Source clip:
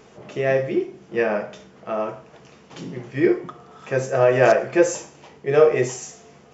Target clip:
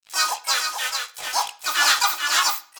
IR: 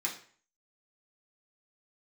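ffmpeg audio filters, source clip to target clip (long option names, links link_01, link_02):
-filter_complex "[0:a]acrusher=bits=4:mix=0:aa=0.5,bass=frequency=250:gain=-9,treble=frequency=4000:gain=-15,aecho=1:1:1032:0.501,asetrate=103194,aresample=44100,aecho=1:1:1.5:0.54,acontrast=59,crystalizer=i=7.5:c=0,asplit=4[link_01][link_02][link_03][link_04];[link_02]asetrate=37084,aresample=44100,atempo=1.18921,volume=-16dB[link_05];[link_03]asetrate=52444,aresample=44100,atempo=0.840896,volume=0dB[link_06];[link_04]asetrate=88200,aresample=44100,atempo=0.5,volume=-9dB[link_07];[link_01][link_05][link_06][link_07]amix=inputs=4:normalize=0,equalizer=frequency=1600:width_type=o:width=0.61:gain=-5.5,asplit=2[link_08][link_09];[1:a]atrim=start_sample=2205,adelay=18[link_10];[link_09][link_10]afir=irnorm=-1:irlink=0,volume=-14.5dB[link_11];[link_08][link_11]amix=inputs=2:normalize=0,volume=-15dB"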